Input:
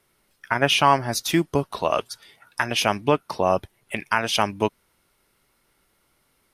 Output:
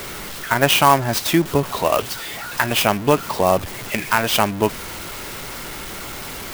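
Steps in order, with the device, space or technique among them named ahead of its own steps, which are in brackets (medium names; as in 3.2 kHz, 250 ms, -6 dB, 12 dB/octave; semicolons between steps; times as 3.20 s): early CD player with a faulty converter (jump at every zero crossing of -28 dBFS; sampling jitter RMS 0.031 ms); trim +3 dB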